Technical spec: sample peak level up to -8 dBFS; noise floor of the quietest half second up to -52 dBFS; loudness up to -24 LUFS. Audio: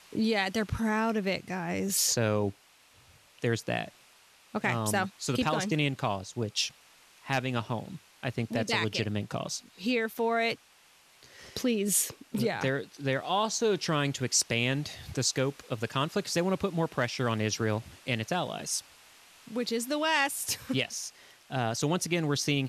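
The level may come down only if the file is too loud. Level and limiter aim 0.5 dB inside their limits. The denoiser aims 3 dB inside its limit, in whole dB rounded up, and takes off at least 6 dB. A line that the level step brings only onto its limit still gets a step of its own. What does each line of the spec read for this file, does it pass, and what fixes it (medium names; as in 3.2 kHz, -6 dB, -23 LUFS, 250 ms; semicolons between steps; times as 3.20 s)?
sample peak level -13.5 dBFS: pass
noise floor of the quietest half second -60 dBFS: pass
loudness -30.0 LUFS: pass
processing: none needed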